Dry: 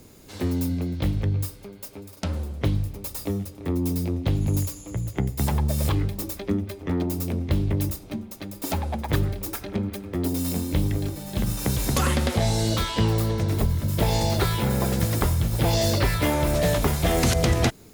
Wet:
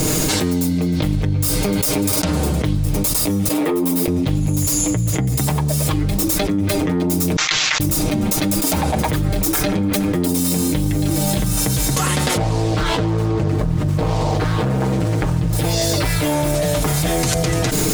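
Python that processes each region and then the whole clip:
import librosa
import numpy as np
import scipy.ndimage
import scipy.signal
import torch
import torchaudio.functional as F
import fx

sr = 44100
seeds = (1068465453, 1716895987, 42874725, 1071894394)

y = fx.chain(x, sr, fx.highpass(hz=370.0, slope=12),
    fx.peak_eq(hz=6100.0, db=-8.5, octaves=1.4),
    fx.ensemble(), at=(3.48, 4.08))
y = fx.chain(y, sr, fx.law_mismatch(coded='A'),
    fx.cheby2_highpass(hz=300.0, order=4, stop_db=70),
    fx.resample_bad(factor=3, down='none', up='filtered'), at=(7.36, 7.8))
y = fx.chain(y, sr, fx.dead_time(dead_ms=0.051),
    fx.lowpass(hz=1400.0, slope=6),
    fx.doppler_dist(depth_ms=0.99), at=(12.37, 15.53))
y = fx.peak_eq(y, sr, hz=7900.0, db=5.5, octaves=1.0)
y = y + 0.7 * np.pad(y, (int(6.5 * sr / 1000.0), 0))[:len(y)]
y = fx.env_flatten(y, sr, amount_pct=100)
y = y * librosa.db_to_amplitude(-2.0)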